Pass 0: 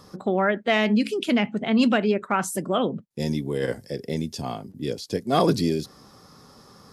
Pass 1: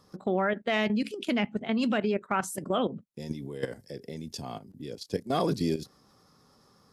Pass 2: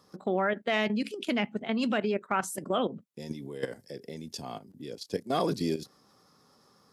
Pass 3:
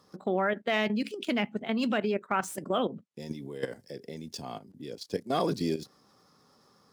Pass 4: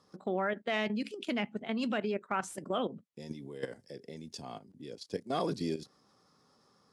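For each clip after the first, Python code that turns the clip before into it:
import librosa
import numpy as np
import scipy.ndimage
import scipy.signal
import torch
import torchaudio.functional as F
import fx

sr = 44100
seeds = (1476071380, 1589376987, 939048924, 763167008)

y1 = fx.level_steps(x, sr, step_db=12)
y1 = y1 * 10.0 ** (-2.0 / 20.0)
y2 = fx.highpass(y1, sr, hz=180.0, slope=6)
y3 = scipy.ndimage.median_filter(y2, 3, mode='constant')
y4 = scipy.signal.sosfilt(scipy.signal.butter(6, 11000.0, 'lowpass', fs=sr, output='sos'), y3)
y4 = y4 * 10.0 ** (-4.5 / 20.0)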